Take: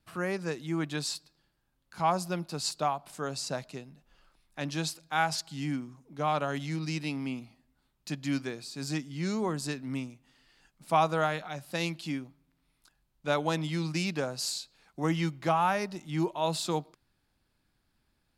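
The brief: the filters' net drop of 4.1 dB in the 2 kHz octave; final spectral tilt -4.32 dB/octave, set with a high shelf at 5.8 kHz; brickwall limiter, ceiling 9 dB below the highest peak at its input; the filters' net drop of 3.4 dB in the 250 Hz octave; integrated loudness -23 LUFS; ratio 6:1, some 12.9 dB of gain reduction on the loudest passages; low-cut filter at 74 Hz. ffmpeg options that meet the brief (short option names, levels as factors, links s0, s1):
-af "highpass=74,equalizer=f=250:t=o:g=-5,equalizer=f=2000:t=o:g=-6,highshelf=f=5800:g=3,acompressor=threshold=0.0158:ratio=6,volume=10,alimiter=limit=0.251:level=0:latency=1"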